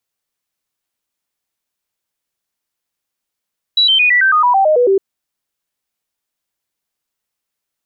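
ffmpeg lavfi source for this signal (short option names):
-f lavfi -i "aevalsrc='0.398*clip(min(mod(t,0.11),0.11-mod(t,0.11))/0.005,0,1)*sin(2*PI*3920*pow(2,-floor(t/0.11)/3)*mod(t,0.11))':d=1.21:s=44100"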